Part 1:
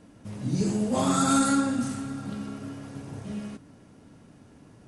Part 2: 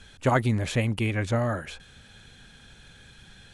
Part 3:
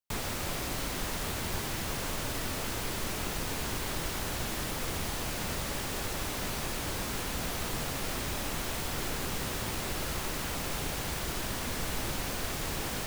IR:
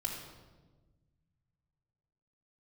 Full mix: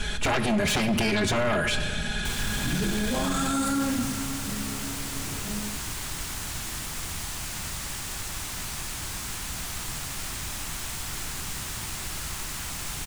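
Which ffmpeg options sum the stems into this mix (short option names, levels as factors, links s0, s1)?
-filter_complex "[0:a]adelay=2200,volume=1[s0];[1:a]aecho=1:1:4.8:0.9,acompressor=threshold=0.0501:ratio=6,aeval=exprs='0.178*sin(PI/2*4.47*val(0)/0.178)':c=same,volume=0.841,asplit=2[s1][s2];[s2]volume=0.398[s3];[2:a]equalizer=f=250:t=o:w=1:g=-4,equalizer=f=500:t=o:w=1:g=-11,equalizer=f=8000:t=o:w=1:g=6,acontrast=47,adelay=2150,volume=0.531[s4];[3:a]atrim=start_sample=2205[s5];[s3][s5]afir=irnorm=-1:irlink=0[s6];[s0][s1][s4][s6]amix=inputs=4:normalize=0,alimiter=limit=0.126:level=0:latency=1:release=14"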